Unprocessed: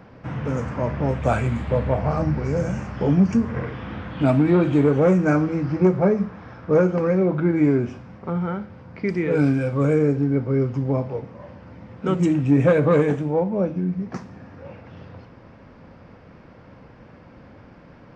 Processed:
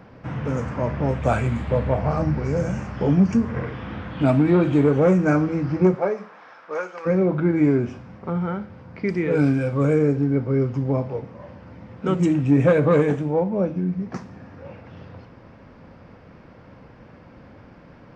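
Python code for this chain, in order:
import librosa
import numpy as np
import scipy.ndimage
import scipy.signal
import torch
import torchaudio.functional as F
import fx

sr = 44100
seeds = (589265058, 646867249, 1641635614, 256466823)

y = fx.highpass(x, sr, hz=fx.line((5.94, 410.0), (7.05, 1200.0)), slope=12, at=(5.94, 7.05), fade=0.02)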